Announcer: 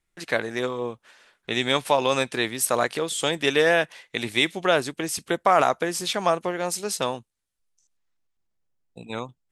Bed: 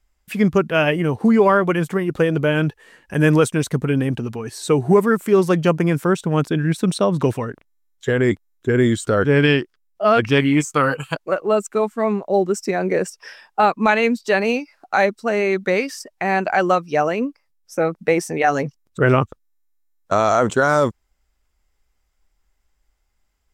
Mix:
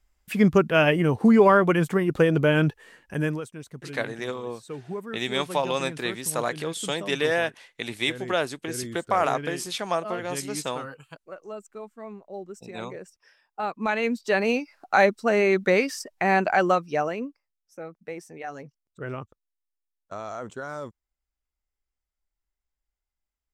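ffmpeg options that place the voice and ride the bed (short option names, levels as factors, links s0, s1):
-filter_complex "[0:a]adelay=3650,volume=0.596[s0];[1:a]volume=6.68,afade=t=out:st=2.84:d=0.57:silence=0.125893,afade=t=in:st=13.44:d=1.46:silence=0.11885,afade=t=out:st=16.32:d=1.25:silence=0.133352[s1];[s0][s1]amix=inputs=2:normalize=0"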